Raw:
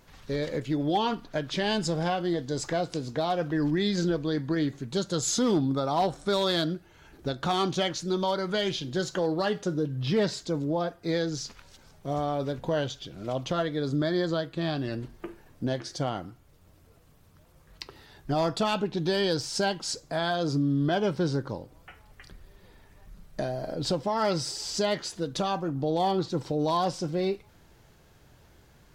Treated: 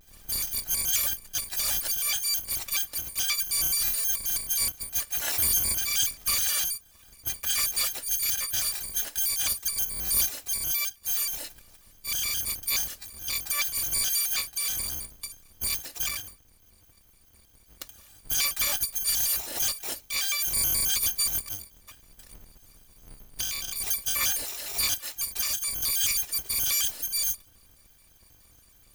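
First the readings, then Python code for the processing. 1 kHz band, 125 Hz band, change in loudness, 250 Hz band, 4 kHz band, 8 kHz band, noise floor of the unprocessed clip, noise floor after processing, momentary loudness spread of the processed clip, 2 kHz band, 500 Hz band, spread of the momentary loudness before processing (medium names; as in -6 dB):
-14.0 dB, -16.0 dB, +3.0 dB, -24.5 dB, +4.0 dB, +14.0 dB, -58 dBFS, -58 dBFS, 9 LU, +1.0 dB, -23.0 dB, 9 LU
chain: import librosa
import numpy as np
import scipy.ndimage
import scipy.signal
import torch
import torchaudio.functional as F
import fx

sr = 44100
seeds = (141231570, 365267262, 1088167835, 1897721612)

y = fx.bit_reversed(x, sr, seeds[0], block=256)
y = fx.vibrato_shape(y, sr, shape='square', rate_hz=4.7, depth_cents=250.0)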